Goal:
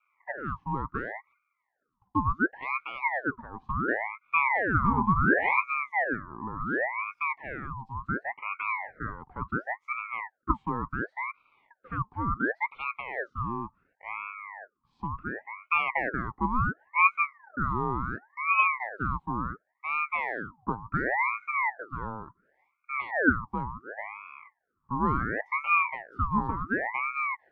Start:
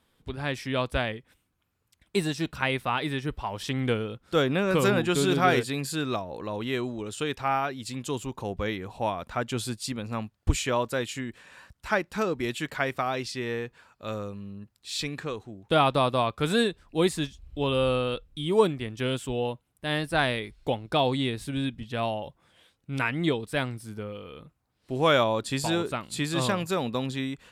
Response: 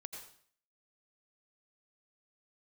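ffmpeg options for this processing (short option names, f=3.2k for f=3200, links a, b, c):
-af "afreqshift=290,lowpass=f=620:t=q:w=6.4,aeval=exprs='val(0)*sin(2*PI*1100*n/s+1100*0.65/0.7*sin(2*PI*0.7*n/s))':c=same,volume=-7.5dB"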